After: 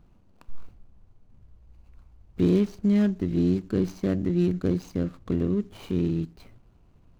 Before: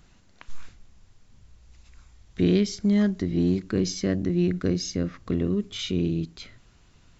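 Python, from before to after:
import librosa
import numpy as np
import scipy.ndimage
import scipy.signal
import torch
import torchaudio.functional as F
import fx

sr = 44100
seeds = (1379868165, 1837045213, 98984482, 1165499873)

y = scipy.ndimage.median_filter(x, 25, mode='constant')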